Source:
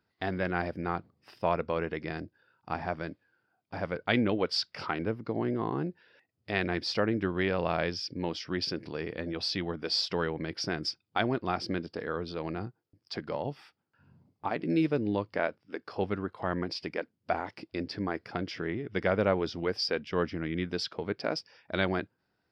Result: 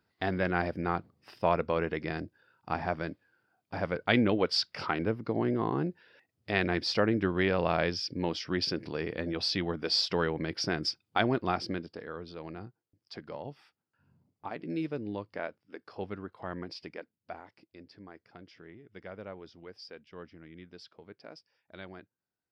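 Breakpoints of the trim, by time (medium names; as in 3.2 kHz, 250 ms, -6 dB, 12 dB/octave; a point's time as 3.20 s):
11.48 s +1.5 dB
12.06 s -7 dB
16.84 s -7 dB
17.68 s -17 dB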